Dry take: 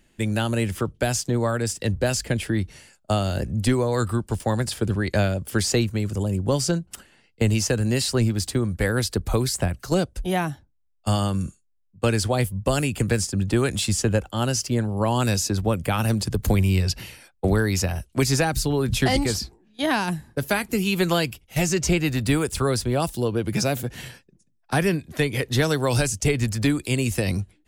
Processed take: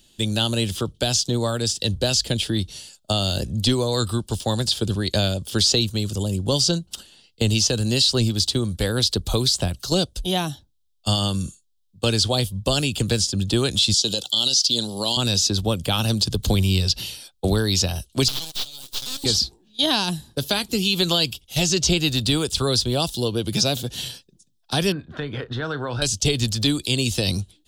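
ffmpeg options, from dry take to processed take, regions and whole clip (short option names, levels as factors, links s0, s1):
-filter_complex "[0:a]asettb=1/sr,asplit=3[s0][s1][s2];[s0]atrim=end=13.944[s3];[s1]atrim=start=13.94:end=15.17,asetpts=PTS-STARTPTS,afade=t=in:d=0.004:c=qsin,afade=t=out:st=1.226:d=0.004:c=qsin,highpass=190,highshelf=f=2800:t=q:w=3:g=11,acompressor=threshold=0.0794:ratio=3:attack=3.2:release=140:knee=1:detection=peak[s4];[s2]atrim=start=15.166[s5];[s3][s4]acrossfade=d=0.004:c1=hsin:c2=qsin[s6];[s6][s5]acrossfade=d=0.004:c1=qsin:c2=hsin,asettb=1/sr,asplit=3[s7][s8][s9];[s7]atrim=end=18.284[s10];[s8]atrim=start=18.28:end=19.24,asetpts=PTS-STARTPTS,afade=t=in:d=0.004:c=qsin,afade=t=out:st=0.956:d=0.004:c=qsin,aderivative,aeval=exprs='abs(val(0))':c=same[s11];[s9]atrim=start=19.236[s12];[s10][s11]acrossfade=d=0.004:c1=hsin:c2=qsin[s13];[s13][s12]acrossfade=d=0.004:c1=qsin:c2=hsin,asettb=1/sr,asplit=3[s14][s15][s16];[s14]atrim=end=24.924[s17];[s15]atrim=start=24.92:end=26.02,asetpts=PTS-STARTPTS,afade=t=in:d=0.004:c=qsin,afade=t=out:st=1.096:d=0.004:c=qsin,acompressor=threshold=0.0562:ratio=5:attack=3.2:release=140:knee=1:detection=peak,lowpass=f=1500:t=q:w=4.3,asplit=2[s18][s19];[s19]adelay=34,volume=0.2[s20];[s18][s20]amix=inputs=2:normalize=0,atrim=end_sample=48510[s21];[s16]atrim=start=26.016[s22];[s17][s21]acrossfade=d=0.004:c1=hsin:c2=qsin[s23];[s23][s22]acrossfade=d=0.004:c1=qsin:c2=hsin,acrossover=split=6000[s24][s25];[s25]acompressor=threshold=0.00631:ratio=4:attack=1:release=60[s26];[s24][s26]amix=inputs=2:normalize=0,highshelf=f=2700:t=q:w=3:g=9,alimiter=level_in=2.37:limit=0.891:release=50:level=0:latency=1,volume=0.422"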